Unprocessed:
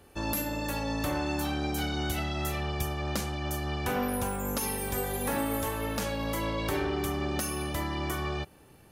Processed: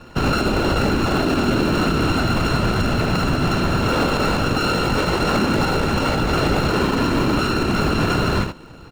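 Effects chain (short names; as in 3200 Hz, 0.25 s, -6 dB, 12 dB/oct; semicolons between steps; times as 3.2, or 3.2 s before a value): sample sorter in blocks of 32 samples; on a send: echo 75 ms -8 dB; on the sum: whisperiser; air absorption 120 m; in parallel at -11 dB: sample-rate reducer 2800 Hz, jitter 0%; on the sum: maximiser +22.5 dB; gain -8.5 dB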